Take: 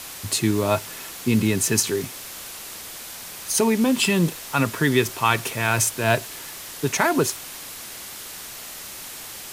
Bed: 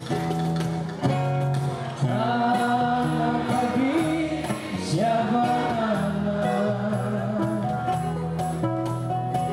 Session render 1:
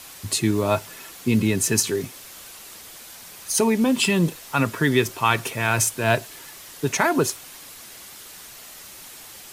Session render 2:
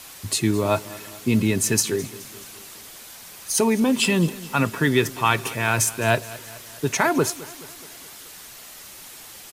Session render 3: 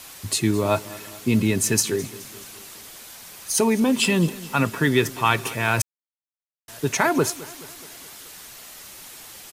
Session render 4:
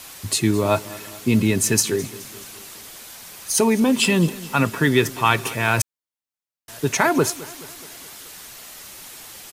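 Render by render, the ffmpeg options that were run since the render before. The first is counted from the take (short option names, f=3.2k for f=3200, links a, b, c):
-af "afftdn=nr=6:nf=-37"
-af "aecho=1:1:212|424|636|848|1060:0.112|0.0628|0.0352|0.0197|0.011"
-filter_complex "[0:a]asplit=3[a][b][c];[a]atrim=end=5.82,asetpts=PTS-STARTPTS,afade=t=out:st=5.816:d=0.004:c=hsin[d];[b]atrim=start=5.82:end=6.68,asetpts=PTS-STARTPTS,volume=0[e];[c]atrim=start=6.68,asetpts=PTS-STARTPTS,afade=t=in:d=0.004:c=hsin[f];[d][e][f]concat=n=3:v=0:a=1"
-af "volume=2dB"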